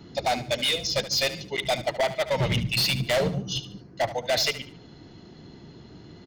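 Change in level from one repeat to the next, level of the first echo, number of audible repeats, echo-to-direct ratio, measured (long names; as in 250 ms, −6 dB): −9.5 dB, −13.5 dB, 3, −13.0 dB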